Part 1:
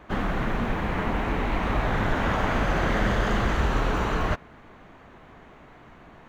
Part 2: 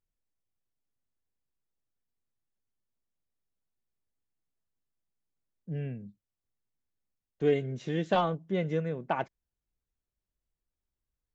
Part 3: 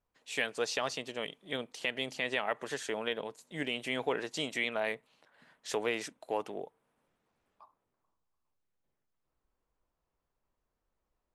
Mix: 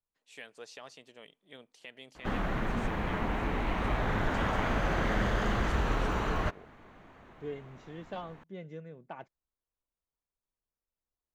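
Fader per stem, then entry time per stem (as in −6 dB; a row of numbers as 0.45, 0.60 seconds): −5.5, −14.0, −14.5 decibels; 2.15, 0.00, 0.00 seconds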